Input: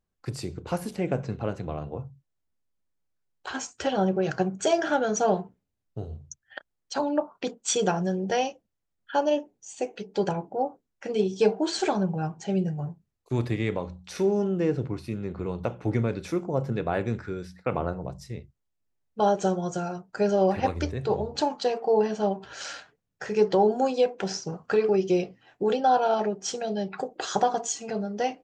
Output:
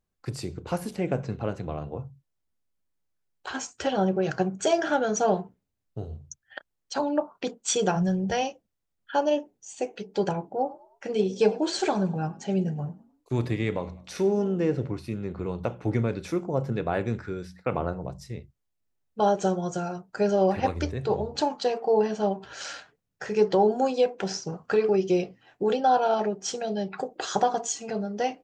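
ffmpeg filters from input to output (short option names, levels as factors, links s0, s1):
-filter_complex "[0:a]asplit=3[s0][s1][s2];[s0]afade=t=out:st=7.95:d=0.02[s3];[s1]asubboost=boost=6.5:cutoff=120,afade=t=in:st=7.95:d=0.02,afade=t=out:st=8.41:d=0.02[s4];[s2]afade=t=in:st=8.41:d=0.02[s5];[s3][s4][s5]amix=inputs=3:normalize=0,asettb=1/sr,asplit=3[s6][s7][s8];[s6]atrim=end=10.534[s9];[s7]atrim=start=10.53:end=14.95,asetpts=PTS-STARTPTS,afade=t=in:d=0.004:c=qsin,afade=t=out:st=4.416:d=0.004:c=qsin,asplit=4[s10][s11][s12][s13];[s11]adelay=102,afreqshift=43,volume=0.0944[s14];[s12]adelay=204,afreqshift=86,volume=0.0367[s15];[s13]adelay=306,afreqshift=129,volume=0.0143[s16];[s10][s14][s15][s16]amix=inputs=4:normalize=0,atrim=end_sample=194922[s17];[s8]atrim=start=14.946[s18];[s9][s17]acrossfade=d=0.004:c1=hsin:c2=qsin[s19];[s19][s18]acrossfade=d=0.004:c1=qsin:c2=hsin"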